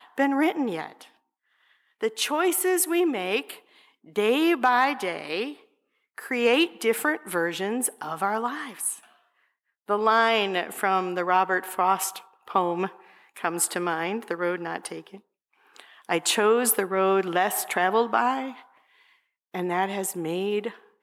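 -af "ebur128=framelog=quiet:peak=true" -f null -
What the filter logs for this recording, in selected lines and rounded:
Integrated loudness:
  I:         -25.0 LUFS
  Threshold: -36.0 LUFS
Loudness range:
  LRA:         4.4 LU
  Threshold: -45.9 LUFS
  LRA low:   -28.4 LUFS
  LRA high:  -24.0 LUFS
True peak:
  Peak:       -8.7 dBFS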